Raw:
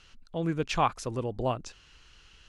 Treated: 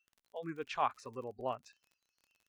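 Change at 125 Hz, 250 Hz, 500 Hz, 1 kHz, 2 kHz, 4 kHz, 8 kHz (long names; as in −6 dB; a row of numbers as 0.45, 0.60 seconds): −19.0, −13.5, −8.5, −6.5, −8.5, −11.5, −15.5 decibels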